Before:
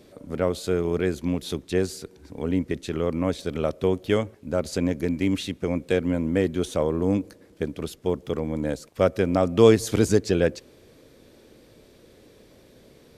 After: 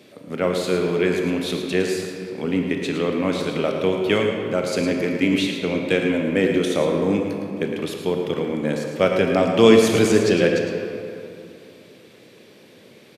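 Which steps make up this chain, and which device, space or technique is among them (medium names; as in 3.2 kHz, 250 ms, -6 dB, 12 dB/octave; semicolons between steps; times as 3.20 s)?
PA in a hall (high-pass 120 Hz 24 dB/octave; peaking EQ 2.6 kHz +8 dB 1.2 oct; delay 110 ms -9 dB; reverberation RT60 2.7 s, pre-delay 23 ms, DRR 2.5 dB); trim +1.5 dB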